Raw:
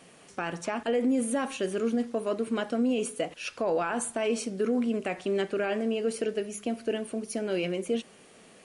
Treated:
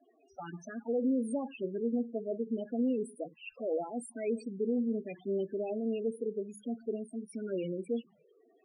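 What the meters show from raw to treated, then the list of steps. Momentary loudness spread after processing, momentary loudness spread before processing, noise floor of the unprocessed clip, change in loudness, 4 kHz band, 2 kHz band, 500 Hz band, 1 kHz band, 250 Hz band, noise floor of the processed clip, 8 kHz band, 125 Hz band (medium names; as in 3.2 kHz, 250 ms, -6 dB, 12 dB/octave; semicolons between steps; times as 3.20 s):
10 LU, 6 LU, -55 dBFS, -5.5 dB, under -15 dB, -16.0 dB, -5.5 dB, -12.0 dB, -4.0 dB, -67 dBFS, -16.0 dB, -4.5 dB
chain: touch-sensitive flanger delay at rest 3.1 ms, full sweep at -24 dBFS; wow and flutter 26 cents; loudest bins only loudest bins 8; trim -3.5 dB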